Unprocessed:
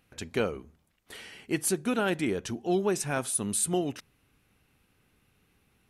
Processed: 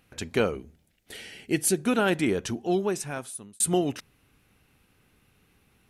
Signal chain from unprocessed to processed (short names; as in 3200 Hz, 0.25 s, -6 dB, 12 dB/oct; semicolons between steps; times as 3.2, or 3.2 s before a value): 0.55–1.79 bell 1100 Hz -13 dB 0.58 oct; 2.45–3.6 fade out; gain +4 dB